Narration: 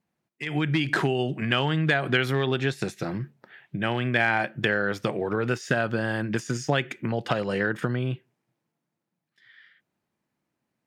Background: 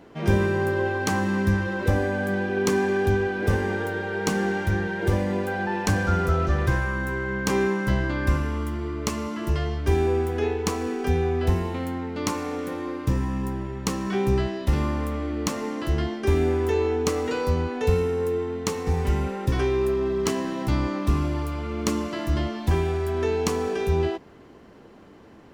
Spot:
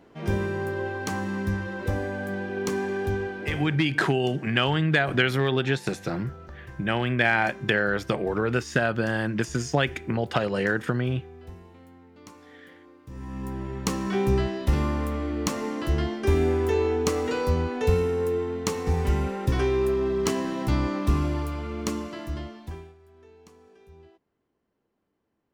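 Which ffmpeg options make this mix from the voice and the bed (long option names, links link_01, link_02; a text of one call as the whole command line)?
ffmpeg -i stem1.wav -i stem2.wav -filter_complex "[0:a]adelay=3050,volume=1dB[link_01];[1:a]volume=15dB,afade=type=out:start_time=3.23:duration=0.6:silence=0.16788,afade=type=in:start_time=13.09:duration=0.67:silence=0.0944061,afade=type=out:start_time=21.3:duration=1.65:silence=0.0398107[link_02];[link_01][link_02]amix=inputs=2:normalize=0" out.wav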